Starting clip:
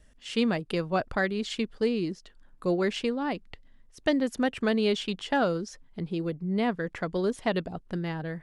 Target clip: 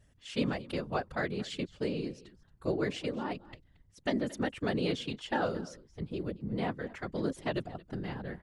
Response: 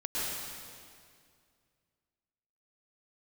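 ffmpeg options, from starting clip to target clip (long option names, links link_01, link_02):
-af "aecho=1:1:225:0.106,afftfilt=real='hypot(re,im)*cos(2*PI*random(0))':imag='hypot(re,im)*sin(2*PI*random(1))':win_size=512:overlap=0.75"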